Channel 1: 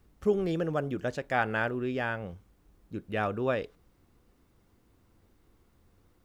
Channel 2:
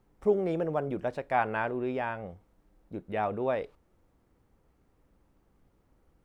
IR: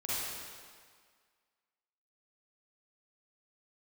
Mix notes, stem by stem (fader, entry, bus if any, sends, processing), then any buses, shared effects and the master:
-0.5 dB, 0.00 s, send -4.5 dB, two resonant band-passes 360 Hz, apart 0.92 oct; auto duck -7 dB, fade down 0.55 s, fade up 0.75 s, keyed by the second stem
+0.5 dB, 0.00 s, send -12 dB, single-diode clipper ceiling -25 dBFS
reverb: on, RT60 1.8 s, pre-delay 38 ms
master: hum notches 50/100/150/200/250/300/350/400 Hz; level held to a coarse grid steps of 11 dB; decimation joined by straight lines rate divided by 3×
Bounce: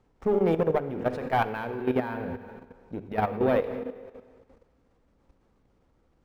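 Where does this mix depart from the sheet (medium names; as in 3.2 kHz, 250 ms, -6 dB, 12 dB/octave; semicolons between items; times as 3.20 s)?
stem 1 -0.5 dB -> +5.5 dB; stem 2 +0.5 dB -> +7.5 dB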